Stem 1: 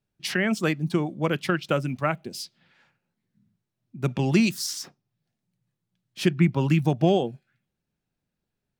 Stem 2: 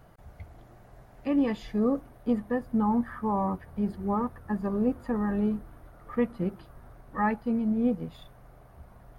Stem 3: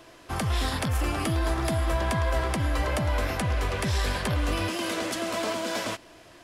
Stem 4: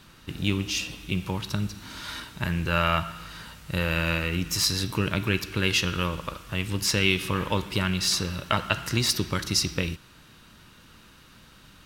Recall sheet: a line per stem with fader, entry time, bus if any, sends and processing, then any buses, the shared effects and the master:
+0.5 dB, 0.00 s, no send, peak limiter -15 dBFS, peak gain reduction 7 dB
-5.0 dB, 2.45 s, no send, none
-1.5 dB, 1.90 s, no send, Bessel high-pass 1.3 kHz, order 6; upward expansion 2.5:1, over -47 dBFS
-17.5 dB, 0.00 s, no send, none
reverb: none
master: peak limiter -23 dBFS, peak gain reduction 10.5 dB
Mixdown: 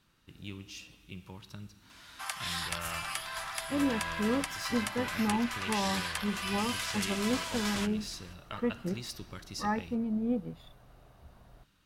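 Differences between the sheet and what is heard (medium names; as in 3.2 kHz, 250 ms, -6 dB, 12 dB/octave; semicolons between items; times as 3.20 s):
stem 1: muted; stem 3: missing upward expansion 2.5:1, over -47 dBFS; master: missing peak limiter -23 dBFS, peak gain reduction 10.5 dB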